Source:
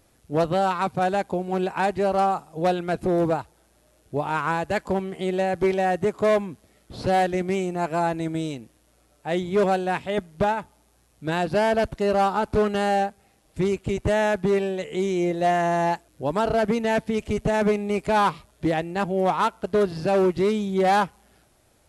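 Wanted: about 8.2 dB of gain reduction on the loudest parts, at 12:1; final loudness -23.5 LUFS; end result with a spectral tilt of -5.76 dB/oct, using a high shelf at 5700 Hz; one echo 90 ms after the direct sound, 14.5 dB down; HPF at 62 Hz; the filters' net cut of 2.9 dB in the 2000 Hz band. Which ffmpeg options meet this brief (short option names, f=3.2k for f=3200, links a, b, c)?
-af "highpass=62,equalizer=f=2k:t=o:g=-3.5,highshelf=f=5.7k:g=-3.5,acompressor=threshold=-25dB:ratio=12,aecho=1:1:90:0.188,volume=7dB"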